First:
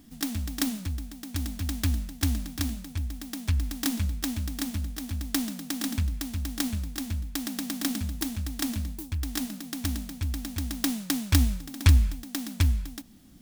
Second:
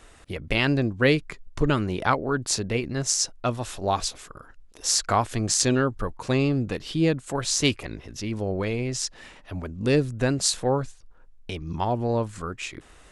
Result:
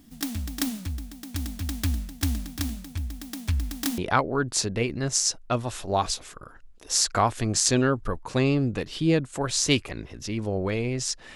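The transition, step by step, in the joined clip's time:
first
3.98 switch to second from 1.92 s

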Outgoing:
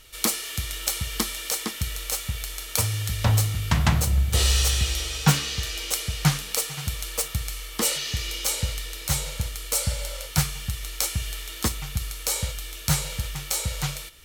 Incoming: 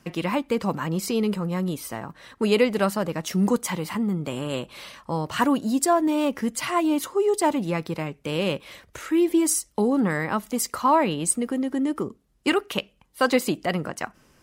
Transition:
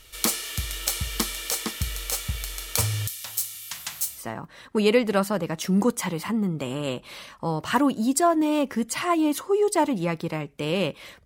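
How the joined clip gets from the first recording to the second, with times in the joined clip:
outgoing
3.07–4.24 differentiator
4.19 switch to incoming from 1.85 s, crossfade 0.10 s

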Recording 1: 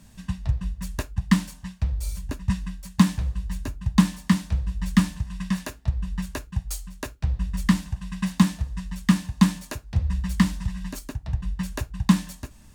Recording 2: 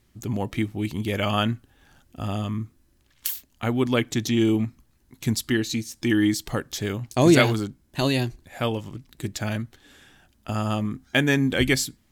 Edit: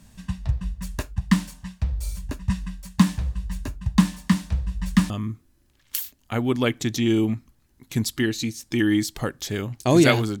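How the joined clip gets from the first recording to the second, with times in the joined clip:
recording 1
5.1 switch to recording 2 from 2.41 s

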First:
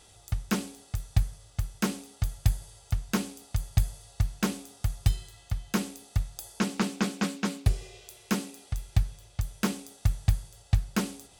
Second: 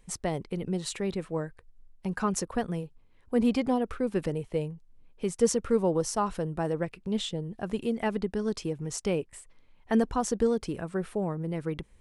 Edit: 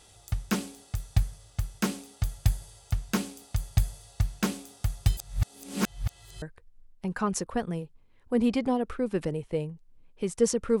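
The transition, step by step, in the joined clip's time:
first
5.17–6.42 reverse
6.42 switch to second from 1.43 s

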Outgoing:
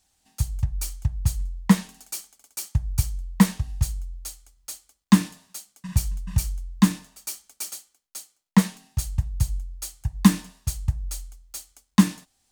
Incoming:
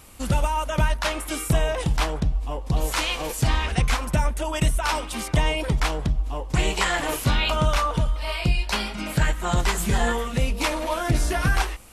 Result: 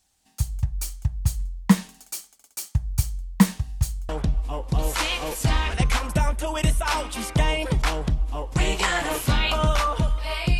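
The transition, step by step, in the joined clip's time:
outgoing
4.09 switch to incoming from 2.07 s

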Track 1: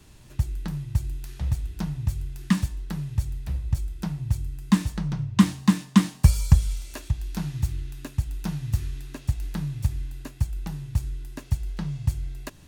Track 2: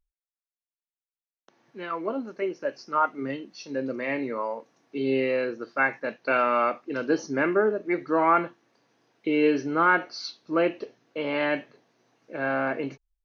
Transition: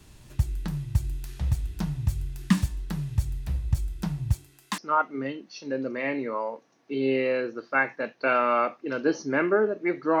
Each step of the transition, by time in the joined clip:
track 1
4.33–4.78 HPF 250 Hz -> 680 Hz
4.78 switch to track 2 from 2.82 s

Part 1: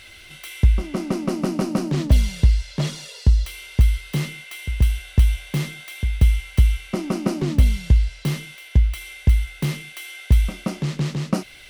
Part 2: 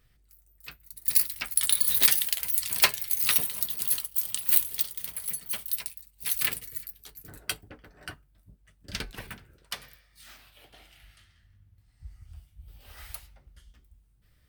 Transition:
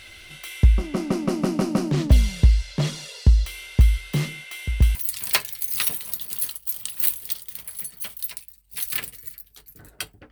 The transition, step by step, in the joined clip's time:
part 1
4.95 switch to part 2 from 2.44 s

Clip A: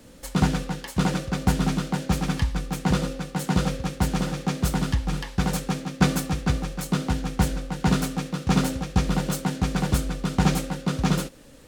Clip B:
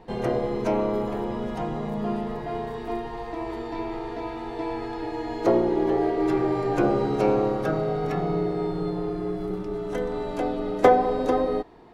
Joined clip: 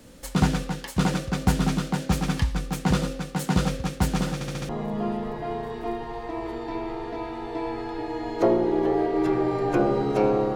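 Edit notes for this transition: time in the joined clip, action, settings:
clip A
4.34 stutter in place 0.07 s, 5 plays
4.69 switch to clip B from 1.73 s

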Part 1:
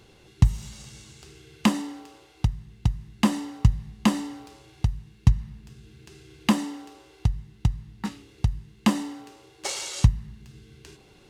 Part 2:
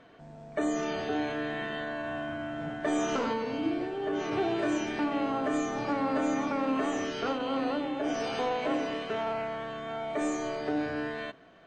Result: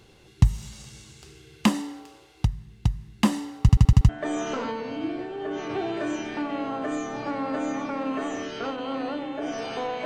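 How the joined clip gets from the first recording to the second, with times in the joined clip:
part 1
3.61 stutter in place 0.08 s, 6 plays
4.09 switch to part 2 from 2.71 s

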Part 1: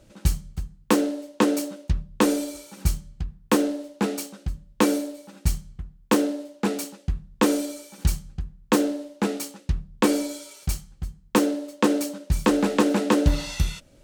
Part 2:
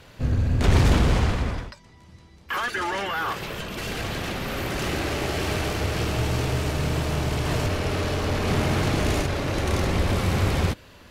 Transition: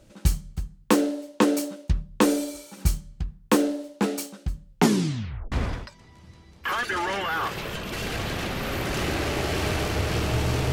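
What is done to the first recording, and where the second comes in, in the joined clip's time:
part 1
4.68 tape stop 0.84 s
5.52 switch to part 2 from 1.37 s

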